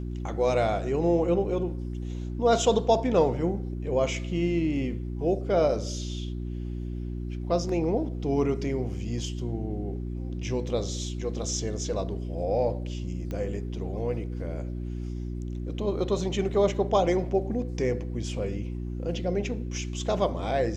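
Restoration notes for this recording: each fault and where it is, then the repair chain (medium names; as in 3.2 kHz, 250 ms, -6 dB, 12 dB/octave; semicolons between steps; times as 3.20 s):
hum 60 Hz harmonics 6 -33 dBFS
13.31 s: pop -22 dBFS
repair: de-click; de-hum 60 Hz, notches 6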